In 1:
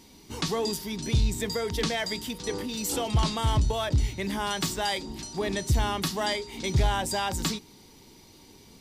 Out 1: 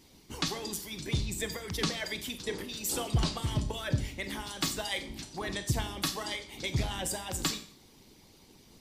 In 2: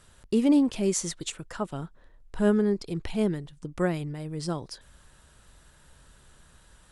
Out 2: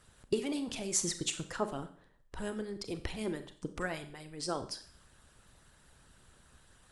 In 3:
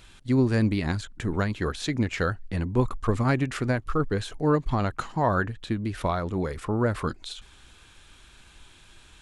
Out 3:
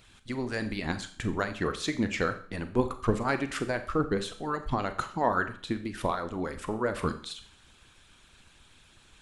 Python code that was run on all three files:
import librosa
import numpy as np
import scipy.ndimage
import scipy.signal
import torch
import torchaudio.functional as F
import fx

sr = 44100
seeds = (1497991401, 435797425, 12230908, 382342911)

y = fx.hpss(x, sr, part='harmonic', gain_db=-16)
y = fx.rev_schroeder(y, sr, rt60_s=0.48, comb_ms=29, drr_db=9.0)